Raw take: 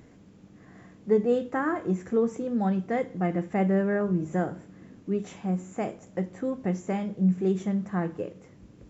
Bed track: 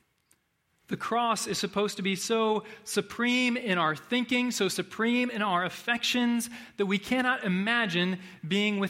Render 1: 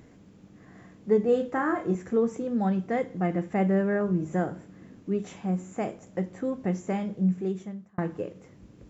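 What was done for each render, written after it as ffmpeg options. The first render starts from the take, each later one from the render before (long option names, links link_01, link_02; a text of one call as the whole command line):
ffmpeg -i in.wav -filter_complex "[0:a]asettb=1/sr,asplit=3[link_01][link_02][link_03];[link_01]atrim=end=1.244[link_04];[link_02]atrim=start=1.24:end=1.95,asetpts=PTS-STARTPTS,afade=type=in:duration=0.004:curve=qsin,afade=type=out:start_time=0.706:duration=0.004:curve=qsin,asplit=2[link_05][link_06];[link_06]adelay=35,volume=-7dB[link_07];[link_05][link_07]amix=inputs=2:normalize=0,atrim=end_sample=31311[link_08];[link_03]atrim=start=1.946[link_09];[link_04][link_08]acrossfade=duration=0.004:curve1=hsin:curve2=qsin[link_10];[link_10][link_09]acrossfade=duration=0.004:curve1=qsin:curve2=hsin,asplit=2[link_11][link_12];[link_11]atrim=end=7.98,asetpts=PTS-STARTPTS,afade=type=out:start_time=7.13:duration=0.85[link_13];[link_12]atrim=start=7.98,asetpts=PTS-STARTPTS,afade=type=in:duration=0.004:curve=hsin[link_14];[link_13][link_14]concat=n=2:v=0:a=1" out.wav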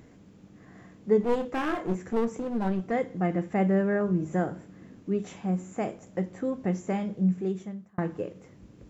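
ffmpeg -i in.wav -filter_complex "[0:a]asplit=3[link_01][link_02][link_03];[link_01]afade=type=out:start_time=1.2:duration=0.02[link_04];[link_02]aeval=exprs='clip(val(0),-1,0.0251)':channel_layout=same,afade=type=in:start_time=1.2:duration=0.02,afade=type=out:start_time=2.9:duration=0.02[link_05];[link_03]afade=type=in:start_time=2.9:duration=0.02[link_06];[link_04][link_05][link_06]amix=inputs=3:normalize=0" out.wav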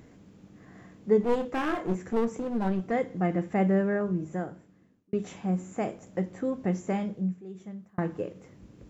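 ffmpeg -i in.wav -filter_complex "[0:a]asplit=4[link_01][link_02][link_03][link_04];[link_01]atrim=end=5.13,asetpts=PTS-STARTPTS,afade=type=out:start_time=3.72:duration=1.41[link_05];[link_02]atrim=start=5.13:end=7.42,asetpts=PTS-STARTPTS,afade=type=in:duration=0.004:curve=hsin,afade=type=out:start_time=1.92:duration=0.37:silence=0.199526[link_06];[link_03]atrim=start=7.42:end=7.48,asetpts=PTS-STARTPTS,volume=-14dB[link_07];[link_04]atrim=start=7.48,asetpts=PTS-STARTPTS,afade=type=in:duration=0.37:silence=0.199526[link_08];[link_05][link_06][link_07][link_08]concat=n=4:v=0:a=1" out.wav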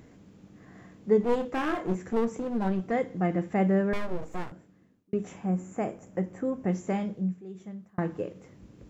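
ffmpeg -i in.wav -filter_complex "[0:a]asettb=1/sr,asplit=3[link_01][link_02][link_03];[link_01]atrim=end=3.934[link_04];[link_02]atrim=start=3.93:end=4.52,asetpts=PTS-STARTPTS,afade=type=in:duration=0.004:curve=qsin,afade=type=out:start_time=0.586:duration=0.004:curve=qsin,aeval=exprs='abs(val(0))':channel_layout=same[link_05];[link_03]atrim=start=4.516[link_06];[link_04][link_05]acrossfade=duration=0.004:curve1=hsin:curve2=qsin[link_07];[link_07][link_06]acrossfade=duration=0.004:curve1=qsin:curve2=hsin,asettb=1/sr,asplit=3[link_08][link_09][link_10];[link_08]atrim=end=5.144[link_11];[link_09]atrim=start=5.14:end=6.69,asetpts=PTS-STARTPTS,afade=type=in:duration=0.004:curve=qsin,afade=type=out:start_time=1.546:duration=0.004:curve=qsin,equalizer=frequency=4000:width=1.5:gain=-9.5[link_12];[link_10]atrim=start=6.686[link_13];[link_11][link_12]acrossfade=duration=0.004:curve1=hsin:curve2=qsin[link_14];[link_14][link_13]acrossfade=duration=0.004:curve1=qsin:curve2=hsin" out.wav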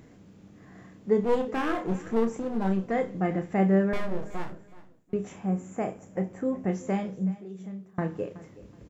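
ffmpeg -i in.wav -filter_complex "[0:a]asplit=2[link_01][link_02];[link_02]adelay=31,volume=-8.5dB[link_03];[link_01][link_03]amix=inputs=2:normalize=0,aecho=1:1:373|746:0.119|0.0321" out.wav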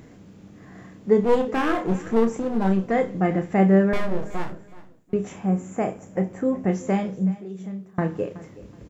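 ffmpeg -i in.wav -af "volume=5.5dB" out.wav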